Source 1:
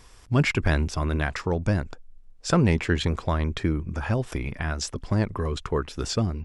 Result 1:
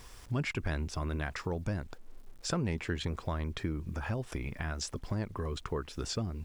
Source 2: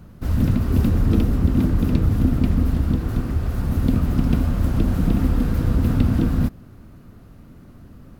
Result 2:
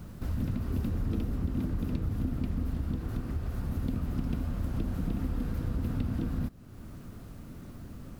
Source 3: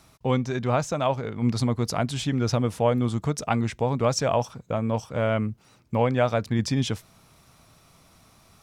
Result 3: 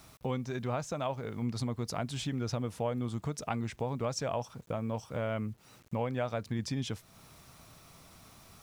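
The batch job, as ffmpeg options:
ffmpeg -i in.wav -af "acrusher=bits=9:mix=0:aa=0.000001,acompressor=threshold=-39dB:ratio=2" out.wav

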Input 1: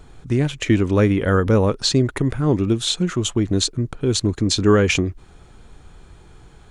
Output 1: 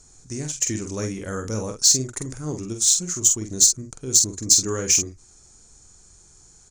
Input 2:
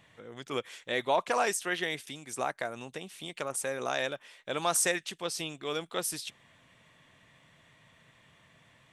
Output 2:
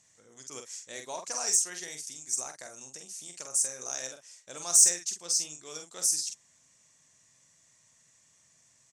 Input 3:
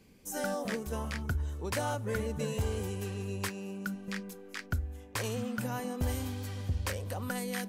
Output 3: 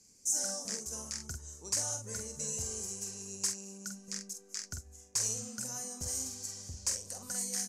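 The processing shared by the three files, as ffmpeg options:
ffmpeg -i in.wav -filter_complex "[0:a]lowpass=frequency=6500:width_type=q:width=2.7,asplit=2[link_01][link_02];[link_02]adelay=46,volume=-6dB[link_03];[link_01][link_03]amix=inputs=2:normalize=0,aexciter=amount=7.7:drive=7.7:freq=5000,volume=-13dB" out.wav

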